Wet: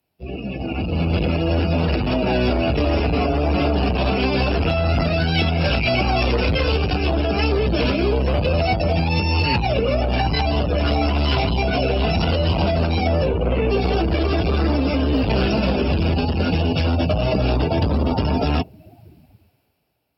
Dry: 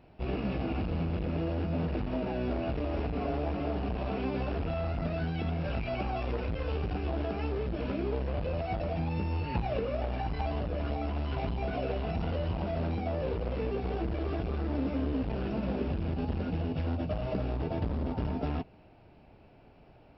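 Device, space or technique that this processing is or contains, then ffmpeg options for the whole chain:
FM broadcast chain: -filter_complex "[0:a]highpass=frequency=57:width=0.5412,highpass=frequency=57:width=1.3066,dynaudnorm=framelen=180:gausssize=13:maxgain=16.5dB,acrossover=split=110|380[link_01][link_02][link_03];[link_01]acompressor=threshold=-20dB:ratio=4[link_04];[link_02]acompressor=threshold=-23dB:ratio=4[link_05];[link_03]acompressor=threshold=-22dB:ratio=4[link_06];[link_04][link_05][link_06]amix=inputs=3:normalize=0,aemphasis=mode=production:type=75fm,alimiter=limit=-13dB:level=0:latency=1:release=288,asoftclip=type=hard:threshold=-16.5dB,lowpass=frequency=15000:width=0.5412,lowpass=frequency=15000:width=1.3066,aemphasis=mode=production:type=75fm,asettb=1/sr,asplit=3[link_07][link_08][link_09];[link_07]atrim=end=13.284[link_10];[link_08]atrim=start=13.28:end=13.7,asetpts=PTS-STARTPTS,afade=type=in:duration=0.004:curve=qsin,afade=type=out:start_time=0.416:duration=0.004:curve=qsin,lowpass=3400[link_11];[link_09]atrim=start=13.696[link_12];[link_10][link_11]acrossfade=duration=0.004:curve1=hsin:curve2=qsin[link_13];[link_13][link_12]acrossfade=duration=0.004:curve1=qsin:curve2=hsin,afftdn=noise_reduction=22:noise_floor=-34,volume=4.5dB"

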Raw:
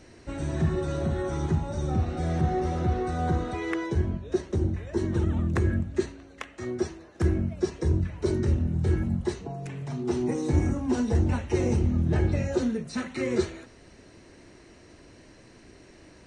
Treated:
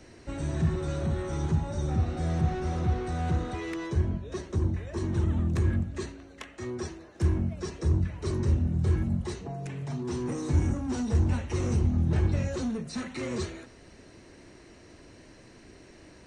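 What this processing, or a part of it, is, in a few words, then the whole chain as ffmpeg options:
one-band saturation: -filter_complex "[0:a]acrossover=split=200|3200[link_01][link_02][link_03];[link_02]asoftclip=type=tanh:threshold=-33dB[link_04];[link_01][link_04][link_03]amix=inputs=3:normalize=0"

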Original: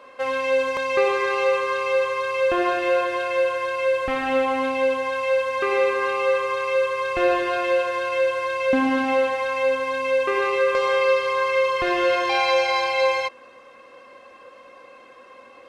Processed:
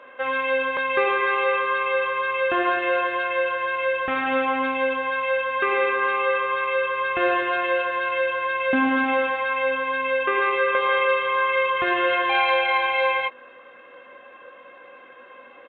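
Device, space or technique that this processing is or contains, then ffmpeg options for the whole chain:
Bluetooth headset: -filter_complex "[0:a]highpass=frequency=170:poles=1,equalizer=frequency=1600:width=4.1:gain=6.5,bandreject=frequency=1100:width=30,asplit=2[link_01][link_02];[link_02]adelay=16,volume=-9dB[link_03];[link_01][link_03]amix=inputs=2:normalize=0,aresample=8000,aresample=44100" -ar 16000 -c:a sbc -b:a 64k

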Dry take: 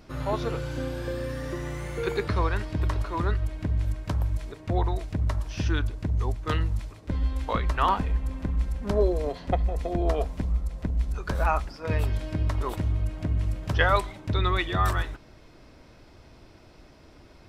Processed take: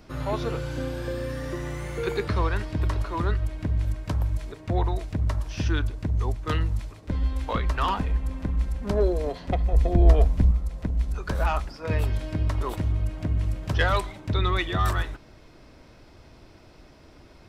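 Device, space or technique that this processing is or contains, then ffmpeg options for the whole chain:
one-band saturation: -filter_complex "[0:a]acrossover=split=400|2300[link_01][link_02][link_03];[link_02]asoftclip=type=tanh:threshold=-23dB[link_04];[link_01][link_04][link_03]amix=inputs=3:normalize=0,asettb=1/sr,asplit=3[link_05][link_06][link_07];[link_05]atrim=end=9.734[link_08];[link_06]atrim=start=9.73:end=10.51,asetpts=PTS-STARTPTS,afade=type=in:duration=0.004:curve=qsin,afade=type=out:start_time=0.776:duration=0.004:curve=qsin,lowshelf=frequency=170:gain=11.5[link_09];[link_07]atrim=start=10.506[link_10];[link_08][link_09]acrossfade=duration=0.004:curve1=hsin:curve2=qsin[link_11];[link_11][link_10]acrossfade=duration=0.004:curve1=qsin:curve2=hsin,volume=1dB"

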